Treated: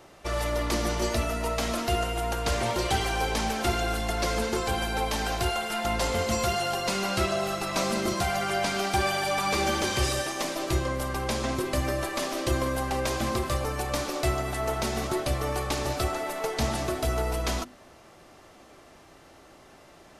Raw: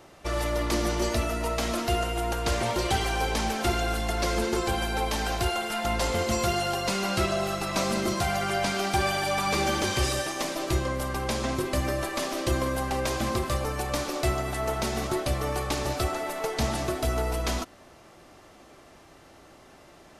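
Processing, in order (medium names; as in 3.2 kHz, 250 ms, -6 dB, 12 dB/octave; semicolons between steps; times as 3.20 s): hum notches 50/100/150/200/250/300/350 Hz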